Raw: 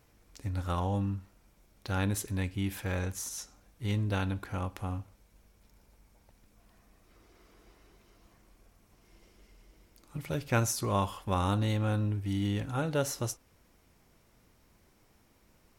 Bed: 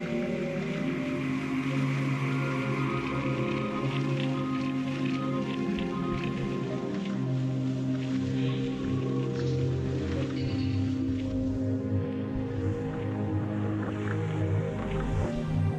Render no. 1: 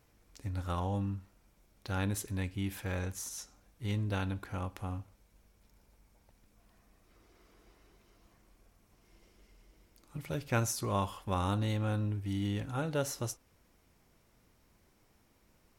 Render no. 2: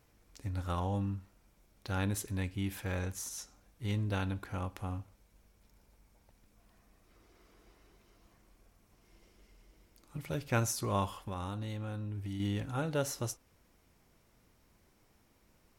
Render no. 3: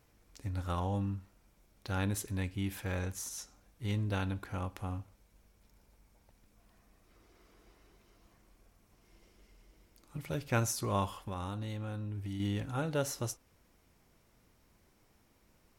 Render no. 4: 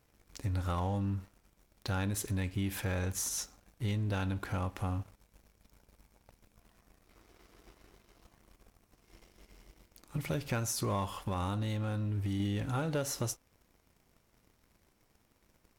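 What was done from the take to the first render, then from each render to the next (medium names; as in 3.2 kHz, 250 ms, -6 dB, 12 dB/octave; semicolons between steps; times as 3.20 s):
trim -3 dB
11.23–12.40 s: compression, threshold -35 dBFS
no audible change
compression 5:1, threshold -37 dBFS, peak gain reduction 11.5 dB; waveshaping leveller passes 2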